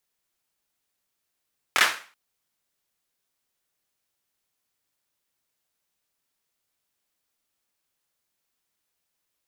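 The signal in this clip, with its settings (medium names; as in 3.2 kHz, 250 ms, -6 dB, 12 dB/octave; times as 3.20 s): hand clap length 0.38 s, bursts 3, apart 24 ms, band 1.6 kHz, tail 0.39 s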